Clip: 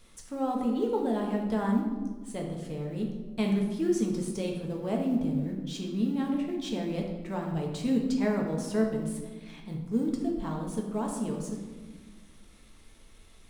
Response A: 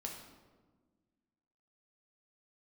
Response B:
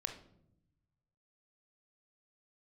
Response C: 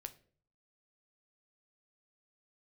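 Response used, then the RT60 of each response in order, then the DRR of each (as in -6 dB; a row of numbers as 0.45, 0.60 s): A; 1.4, 0.75, 0.50 s; -0.5, 5.0, 8.5 dB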